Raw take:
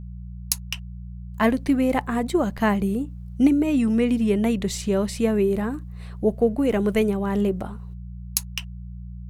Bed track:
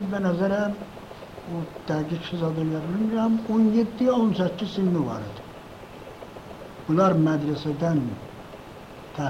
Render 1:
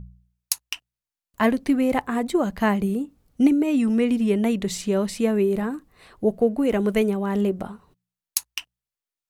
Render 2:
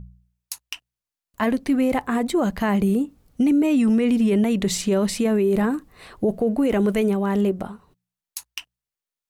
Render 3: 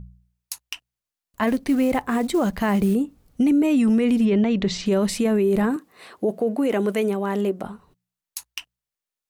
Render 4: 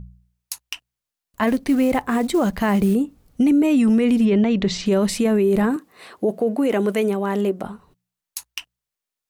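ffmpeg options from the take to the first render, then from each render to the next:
ffmpeg -i in.wav -af "bandreject=frequency=60:width_type=h:width=4,bandreject=frequency=120:width_type=h:width=4,bandreject=frequency=180:width_type=h:width=4" out.wav
ffmpeg -i in.wav -af "dynaudnorm=framelen=230:gausssize=13:maxgain=8dB,alimiter=limit=-13dB:level=0:latency=1:release=22" out.wav
ffmpeg -i in.wav -filter_complex "[0:a]asettb=1/sr,asplit=3[link_01][link_02][link_03];[link_01]atrim=end=1.474[link_04];[link_02]atrim=start=1.47:end=2.94,asetpts=PTS-STARTPTS,afade=type=in:duration=0.004:curve=qsin,afade=type=out:start_time=1.466:duration=0.004:curve=qsin,acrusher=bits=7:mode=log:mix=0:aa=0.000001[link_05];[link_03]atrim=start=2.936[link_06];[link_04][link_05]acrossfade=duration=0.004:curve1=hsin:curve2=qsin[link_07];[link_07][link_06]acrossfade=duration=0.004:curve1=qsin:curve2=hsin,asettb=1/sr,asplit=3[link_08][link_09][link_10];[link_08]atrim=end=4.254[link_11];[link_09]atrim=start=4.25:end=4.86,asetpts=PTS-STARTPTS,afade=type=in:duration=0.004:curve=qsin,afade=type=out:start_time=0.606:duration=0.004:curve=qsin,lowpass=frequency=5400:width=0.5412,lowpass=frequency=5400:width=1.3066[link_12];[link_10]atrim=start=4.856[link_13];[link_11][link_12]acrossfade=duration=0.004:curve1=hsin:curve2=qsin[link_14];[link_14][link_13]acrossfade=duration=0.004:curve1=qsin:curve2=hsin,asettb=1/sr,asplit=3[link_15][link_16][link_17];[link_15]atrim=end=5.764[link_18];[link_16]atrim=start=5.76:end=7.64,asetpts=PTS-STARTPTS,afade=type=in:duration=0.004:curve=qsin,afade=type=out:start_time=1.876:duration=0.004:curve=qsin,highpass=240[link_19];[link_17]atrim=start=7.636[link_20];[link_18][link_19]acrossfade=duration=0.004:curve1=hsin:curve2=qsin[link_21];[link_21][link_20]acrossfade=duration=0.004:curve1=qsin:curve2=hsin" out.wav
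ffmpeg -i in.wav -af "volume=2dB" out.wav

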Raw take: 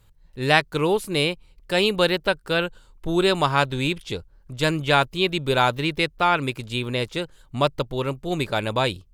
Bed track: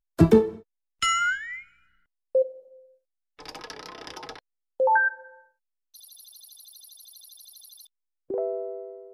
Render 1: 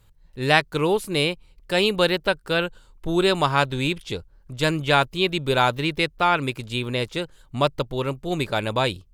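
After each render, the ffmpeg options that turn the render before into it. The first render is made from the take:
ffmpeg -i in.wav -af anull out.wav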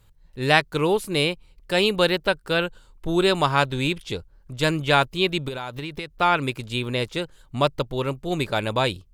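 ffmpeg -i in.wav -filter_complex "[0:a]asettb=1/sr,asplit=3[link_01][link_02][link_03];[link_01]atrim=end=5.484[link_04];[link_02]atrim=start=5.48:end=6.18,asetpts=PTS-STARTPTS,afade=type=in:duration=0.004:curve=qsin,afade=type=out:start_time=0.696:duration=0.004:curve=qsin,acompressor=threshold=-27dB:ratio=12:attack=3.2:release=140:knee=1:detection=peak[link_05];[link_03]atrim=start=6.176[link_06];[link_04][link_05]acrossfade=duration=0.004:curve1=hsin:curve2=qsin[link_07];[link_07][link_06]acrossfade=duration=0.004:curve1=qsin:curve2=hsin" out.wav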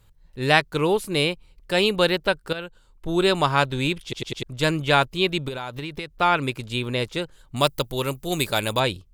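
ffmpeg -i in.wav -filter_complex "[0:a]asettb=1/sr,asplit=3[link_01][link_02][link_03];[link_01]atrim=end=7.564[link_04];[link_02]atrim=start=7.56:end=8.8,asetpts=PTS-STARTPTS,afade=type=in:duration=0.004:curve=qsin,afade=type=out:start_time=1.236:duration=0.004:curve=qsin,aemphasis=mode=production:type=75fm[link_05];[link_03]atrim=start=8.796[link_06];[link_04][link_05]acrossfade=duration=0.004:curve1=hsin:curve2=qsin[link_07];[link_07][link_06]acrossfade=duration=0.004:curve1=qsin:curve2=hsin,asplit=6[link_08][link_09][link_10][link_11][link_12][link_13];[link_08]atrim=end=2.53,asetpts=PTS-STARTPTS,afade=type=out:start_time=2.526:duration=0.004:curve=hsin:silence=0.223872[link_14];[link_09]atrim=start=2.53:end=4.132,asetpts=PTS-STARTPTS,afade=type=in:duration=0.73:silence=0.223872[link_15];[link_10]atrim=start=4.028:end=4.132[link_16];[link_11]atrim=start=4.028:end=4.132[link_17];[link_12]atrim=start=4.028:end=4.132[link_18];[link_13]atrim=start=4.428[link_19];[link_14][link_15]concat=n=2:v=0:a=1[link_20];[link_20][link_16]acrossfade=duration=0.004:curve1=hsin:curve2=hsin[link_21];[link_21][link_17]acrossfade=duration=0.004:curve1=hsin:curve2=hsin[link_22];[link_22][link_18]acrossfade=duration=0.004:curve1=hsin:curve2=hsin[link_23];[link_23][link_19]acrossfade=duration=0.004:curve1=hsin:curve2=hsin" out.wav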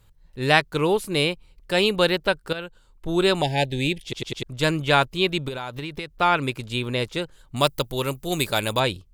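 ffmpeg -i in.wav -filter_complex "[0:a]asettb=1/sr,asplit=3[link_01][link_02][link_03];[link_01]atrim=end=3.424[link_04];[link_02]atrim=start=3.42:end=4.08,asetpts=PTS-STARTPTS,afade=type=in:duration=0.004:curve=qsin,afade=type=out:start_time=0.656:duration=0.004:curve=qsin,asuperstop=centerf=1200:order=12:qfactor=1.5[link_05];[link_03]atrim=start=4.076[link_06];[link_04][link_05]acrossfade=duration=0.004:curve1=hsin:curve2=qsin[link_07];[link_07][link_06]acrossfade=duration=0.004:curve1=qsin:curve2=hsin" out.wav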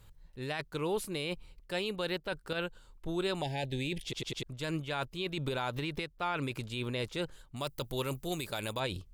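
ffmpeg -i in.wav -af "areverse,acompressor=threshold=-29dB:ratio=8,areverse,alimiter=limit=-23.5dB:level=0:latency=1:release=61" out.wav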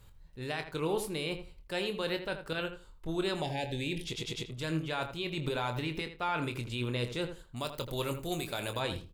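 ffmpeg -i in.wav -filter_complex "[0:a]asplit=2[link_01][link_02];[link_02]adelay=25,volume=-9dB[link_03];[link_01][link_03]amix=inputs=2:normalize=0,asplit=2[link_04][link_05];[link_05]adelay=81,lowpass=frequency=2300:poles=1,volume=-9dB,asplit=2[link_06][link_07];[link_07]adelay=81,lowpass=frequency=2300:poles=1,volume=0.18,asplit=2[link_08][link_09];[link_09]adelay=81,lowpass=frequency=2300:poles=1,volume=0.18[link_10];[link_06][link_08][link_10]amix=inputs=3:normalize=0[link_11];[link_04][link_11]amix=inputs=2:normalize=0" out.wav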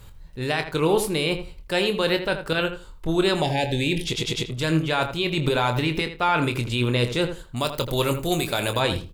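ffmpeg -i in.wav -af "volume=11.5dB" out.wav

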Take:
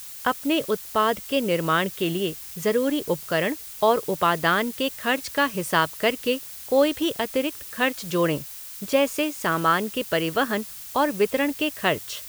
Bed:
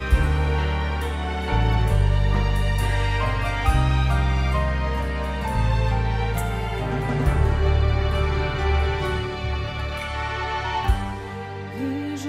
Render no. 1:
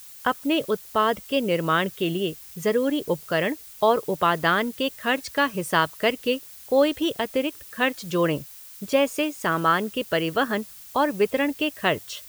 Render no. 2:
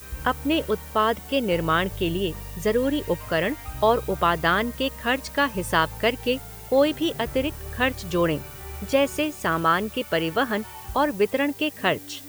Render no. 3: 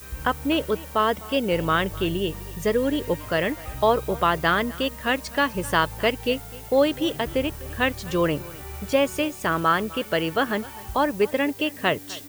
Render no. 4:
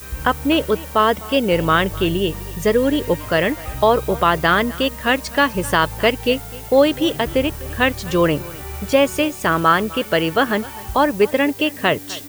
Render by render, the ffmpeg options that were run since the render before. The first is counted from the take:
ffmpeg -i in.wav -af "afftdn=noise_reduction=6:noise_floor=-39" out.wav
ffmpeg -i in.wav -i bed.wav -filter_complex "[1:a]volume=-17dB[link_01];[0:a][link_01]amix=inputs=2:normalize=0" out.wav
ffmpeg -i in.wav -af "aecho=1:1:254:0.0944" out.wav
ffmpeg -i in.wav -af "volume=6dB,alimiter=limit=-3dB:level=0:latency=1" out.wav

